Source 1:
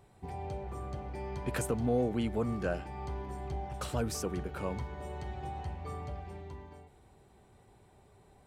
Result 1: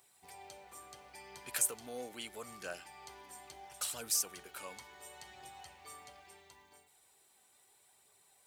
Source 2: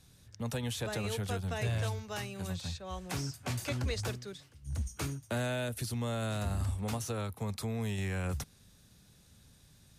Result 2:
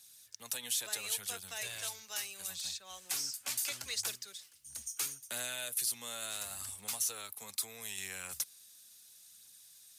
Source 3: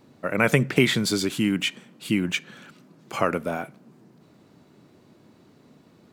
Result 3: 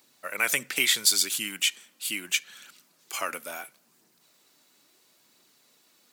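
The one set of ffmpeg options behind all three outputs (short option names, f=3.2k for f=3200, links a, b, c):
-af "aphaser=in_gain=1:out_gain=1:delay=4.1:decay=0.27:speed=0.74:type=triangular,aderivative,volume=8.5dB"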